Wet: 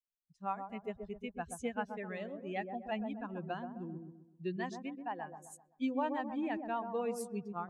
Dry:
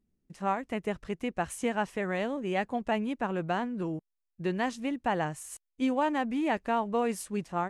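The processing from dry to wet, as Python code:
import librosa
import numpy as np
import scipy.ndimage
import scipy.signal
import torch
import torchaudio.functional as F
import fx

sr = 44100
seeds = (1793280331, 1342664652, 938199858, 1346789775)

y = fx.bin_expand(x, sr, power=2.0)
y = fx.cabinet(y, sr, low_hz=320.0, low_slope=12, high_hz=3200.0, hz=(530.0, 1400.0, 2800.0), db=(-6, -3, -3), at=(4.9, 5.42), fade=0.02)
y = fx.echo_wet_lowpass(y, sr, ms=129, feedback_pct=40, hz=870.0, wet_db=-5.0)
y = F.gain(torch.from_numpy(y), -5.0).numpy()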